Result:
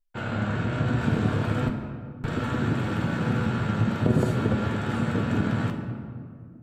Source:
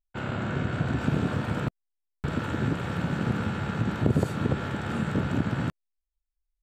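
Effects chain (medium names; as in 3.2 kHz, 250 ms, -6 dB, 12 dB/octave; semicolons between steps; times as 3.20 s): flange 1.2 Hz, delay 7.8 ms, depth 1.8 ms, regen +52%; on a send: reverberation RT60 2.0 s, pre-delay 4 ms, DRR 3.5 dB; on the sum: trim +4.5 dB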